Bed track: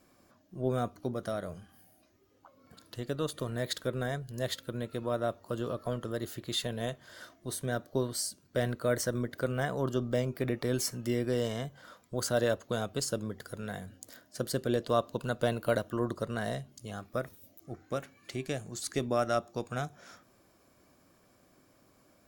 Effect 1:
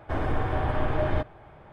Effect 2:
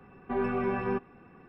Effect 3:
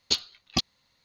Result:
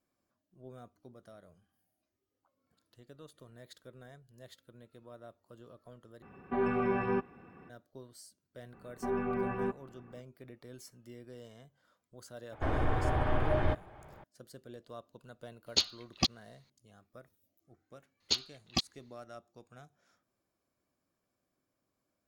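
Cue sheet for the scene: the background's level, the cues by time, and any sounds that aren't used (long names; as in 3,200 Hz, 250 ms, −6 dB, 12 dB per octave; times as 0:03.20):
bed track −19.5 dB
0:06.22: overwrite with 2 −1 dB + high-pass filter 41 Hz
0:08.73: mix in 2 −3.5 dB + low-pass filter 1,900 Hz 6 dB per octave
0:12.52: mix in 1 −3.5 dB
0:15.66: mix in 3 −3 dB
0:18.20: mix in 3 −5.5 dB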